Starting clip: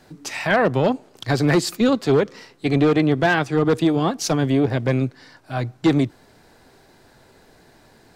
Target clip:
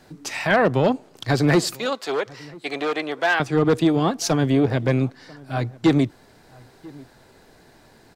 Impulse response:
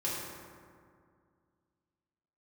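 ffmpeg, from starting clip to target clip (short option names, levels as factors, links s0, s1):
-filter_complex "[0:a]asettb=1/sr,asplit=3[s0][s1][s2];[s0]atrim=end=1.754[s3];[s1]atrim=start=1.75:end=3.4,asetpts=PTS-STARTPTS,afade=t=in:d=0.004:c=qsin,afade=t=out:st=1.646:d=0.004:c=qsin,highpass=630[s4];[s2]atrim=start=3.396[s5];[s3][s4]acrossfade=d=0.004:c1=hsin:c2=qsin[s6];[s6][s5]acrossfade=d=0.004:c1=qsin:c2=hsin,asplit=2[s7][s8];[s8]adelay=991.3,volume=0.0708,highshelf=f=4000:g=-22.3[s9];[s7][s9]amix=inputs=2:normalize=0"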